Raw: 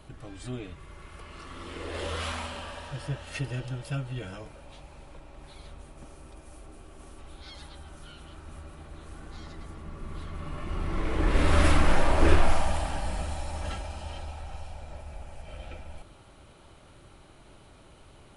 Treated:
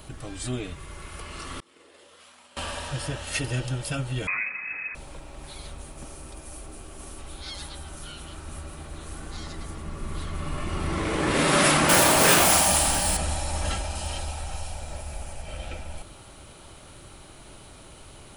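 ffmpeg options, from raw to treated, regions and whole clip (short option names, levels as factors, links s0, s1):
-filter_complex "[0:a]asettb=1/sr,asplit=3[s0][s1][s2];[s0]atrim=end=1.604[s3];[s1]atrim=start=1.6:end=2.57,asetpts=PTS-STARTPTS,afade=t=in:d=0.004:c=qsin,afade=t=out:st=0.966:d=0.004:c=qsin,highpass=220,agate=range=0.0224:threshold=0.0355:ratio=3:release=100:detection=peak,acompressor=threshold=0.00158:ratio=16:attack=3.2:release=140:knee=1:detection=peak[s4];[s2]atrim=start=2.566[s5];[s3][s4]acrossfade=d=0.004:c1=hsin:c2=qsin[s6];[s6][s5]acrossfade=d=0.004:c1=qsin:c2=hsin,asettb=1/sr,asplit=3[s7][s8][s9];[s7]atrim=end=4.274[s10];[s8]atrim=start=4.27:end=4.95,asetpts=PTS-STARTPTS,afade=t=in:d=0.004:c=qsin,afade=t=out:st=0.676:d=0.004:c=qsin,lowpass=f=2200:t=q:w=0.5098,lowpass=f=2200:t=q:w=0.6013,lowpass=f=2200:t=q:w=0.9,lowpass=f=2200:t=q:w=2.563,afreqshift=-2600,acontrast=37[s11];[s9]atrim=start=4.946[s12];[s10][s11]acrossfade=d=0.004:c1=hsin:c2=qsin[s13];[s13][s12]acrossfade=d=0.004:c1=qsin:c2=hsin,asettb=1/sr,asplit=3[s14][s15][s16];[s14]atrim=end=11.894[s17];[s15]atrim=start=11.89:end=13.17,asetpts=PTS-STARTPTS,afade=t=in:d=0.004:c=qsin,afade=t=out:st=1.276:d=0.004:c=qsin,highshelf=f=3900:g=9.5,acrusher=bits=6:mode=log:mix=0:aa=0.000001,asplit=2[s18][s19];[s19]adelay=22,volume=0.501[s20];[s18][s20]amix=inputs=2:normalize=0,atrim=end_sample=56448[s21];[s16]atrim=start=13.166[s22];[s17][s21]acrossfade=d=0.004:c1=hsin:c2=qsin[s23];[s23][s22]acrossfade=d=0.004:c1=qsin:c2=hsin,asettb=1/sr,asplit=3[s24][s25][s26];[s24]atrim=end=13.954[s27];[s25]atrim=start=13.95:end=15.33,asetpts=PTS-STARTPTS,afade=t=in:d=0.004:c=qsin,afade=t=out:st=1.376:d=0.004:c=qsin,highshelf=f=5800:g=6,asoftclip=type=hard:threshold=0.0398[s28];[s26]atrim=start=15.326[s29];[s27][s28]acrossfade=d=0.004:c1=hsin:c2=qsin[s30];[s30][s29]acrossfade=d=0.004:c1=qsin:c2=hsin,afftfilt=real='re*lt(hypot(re,im),0.398)':imag='im*lt(hypot(re,im),0.398)':win_size=1024:overlap=0.75,highshelf=f=5100:g=12,volume=1.88"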